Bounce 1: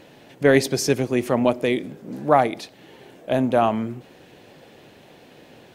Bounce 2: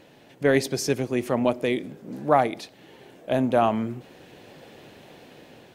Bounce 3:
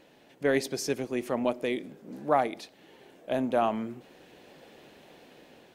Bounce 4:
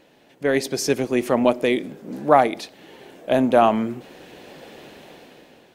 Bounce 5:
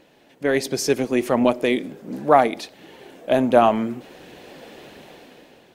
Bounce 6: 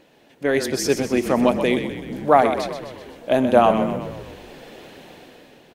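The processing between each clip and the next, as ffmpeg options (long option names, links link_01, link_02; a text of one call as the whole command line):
ffmpeg -i in.wav -af "dynaudnorm=framelen=520:gausssize=5:maxgain=11.5dB,volume=-4.5dB" out.wav
ffmpeg -i in.wav -af "equalizer=frequency=110:width_type=o:width=0.91:gain=-8.5,volume=-5dB" out.wav
ffmpeg -i in.wav -af "dynaudnorm=framelen=130:gausssize=11:maxgain=7.5dB,volume=3dB" out.wav
ffmpeg -i in.wav -af "aphaser=in_gain=1:out_gain=1:delay=4.6:decay=0.21:speed=1.4:type=triangular" out.wav
ffmpeg -i in.wav -filter_complex "[0:a]asplit=8[link_01][link_02][link_03][link_04][link_05][link_06][link_07][link_08];[link_02]adelay=127,afreqshift=-36,volume=-9dB[link_09];[link_03]adelay=254,afreqshift=-72,volume=-13.9dB[link_10];[link_04]adelay=381,afreqshift=-108,volume=-18.8dB[link_11];[link_05]adelay=508,afreqshift=-144,volume=-23.6dB[link_12];[link_06]adelay=635,afreqshift=-180,volume=-28.5dB[link_13];[link_07]adelay=762,afreqshift=-216,volume=-33.4dB[link_14];[link_08]adelay=889,afreqshift=-252,volume=-38.3dB[link_15];[link_01][link_09][link_10][link_11][link_12][link_13][link_14][link_15]amix=inputs=8:normalize=0" out.wav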